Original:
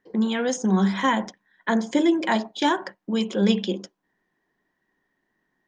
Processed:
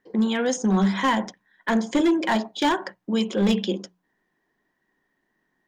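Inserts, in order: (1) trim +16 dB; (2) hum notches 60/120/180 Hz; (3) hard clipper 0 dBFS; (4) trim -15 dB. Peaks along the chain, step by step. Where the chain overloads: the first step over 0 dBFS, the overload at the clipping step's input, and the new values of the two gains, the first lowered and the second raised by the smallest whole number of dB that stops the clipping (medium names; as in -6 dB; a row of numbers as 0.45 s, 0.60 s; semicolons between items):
+8.0 dBFS, +8.0 dBFS, 0.0 dBFS, -15.0 dBFS; step 1, 8.0 dB; step 1 +8 dB, step 4 -7 dB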